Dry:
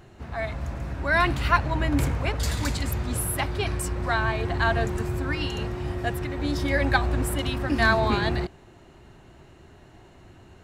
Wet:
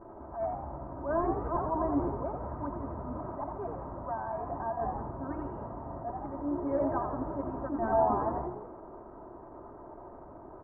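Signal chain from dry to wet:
linear delta modulator 32 kbit/s, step −35.5 dBFS
low-shelf EQ 270 Hz −11.5 dB
mains-hum notches 60/120/180/240/300/360 Hz
comb filter 3.2 ms, depth 71%
echo with shifted repeats 85 ms, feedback 45%, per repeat +63 Hz, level −6.5 dB
0:02.22–0:04.77: downward compressor 3 to 1, threshold −27 dBFS, peak gain reduction 6.5 dB
Butterworth low-pass 1,100 Hz 36 dB per octave
parametric band 88 Hz −6.5 dB 0.27 octaves
level that may rise only so fast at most 130 dB per second
level −2 dB

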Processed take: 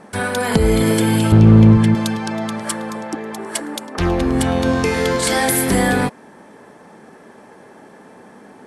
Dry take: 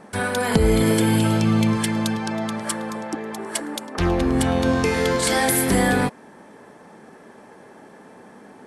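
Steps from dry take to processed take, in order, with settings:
0:01.32–0:01.95: RIAA equalisation playback
asymmetric clip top −8.5 dBFS
level +2.5 dB

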